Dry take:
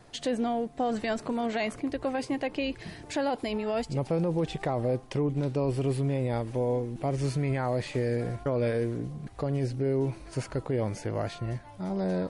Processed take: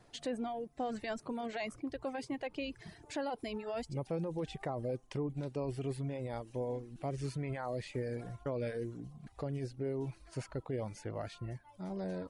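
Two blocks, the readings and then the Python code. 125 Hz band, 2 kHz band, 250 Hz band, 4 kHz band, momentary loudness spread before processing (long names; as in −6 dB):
−10.5 dB, −8.5 dB, −10.0 dB, −8.5 dB, 6 LU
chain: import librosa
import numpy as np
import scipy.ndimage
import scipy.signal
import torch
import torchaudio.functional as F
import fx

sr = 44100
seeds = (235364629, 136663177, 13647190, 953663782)

y = fx.dereverb_blind(x, sr, rt60_s=0.8)
y = F.gain(torch.from_numpy(y), -8.0).numpy()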